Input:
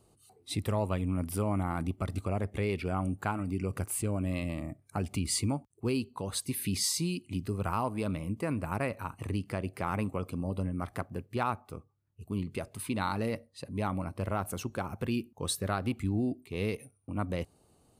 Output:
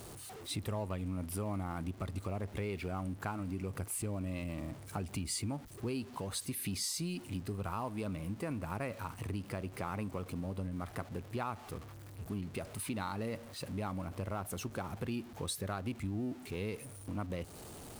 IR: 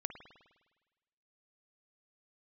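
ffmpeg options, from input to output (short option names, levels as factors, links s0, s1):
-af "aeval=exprs='val(0)+0.5*0.0075*sgn(val(0))':c=same,acompressor=threshold=0.0141:ratio=2,volume=0.841"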